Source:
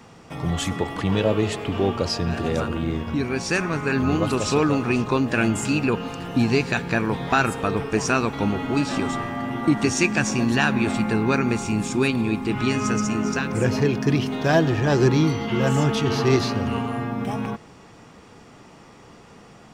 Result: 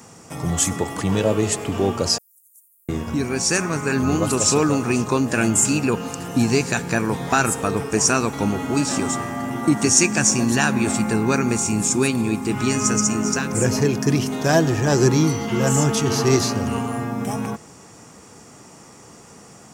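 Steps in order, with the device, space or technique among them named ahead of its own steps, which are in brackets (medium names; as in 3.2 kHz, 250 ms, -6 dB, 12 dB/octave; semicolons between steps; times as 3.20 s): budget condenser microphone (high-pass 66 Hz; resonant high shelf 5.1 kHz +11 dB, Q 1.5); 2.18–2.89 s: inverse Chebyshev high-pass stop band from 2.7 kHz, stop band 80 dB; trim +1.5 dB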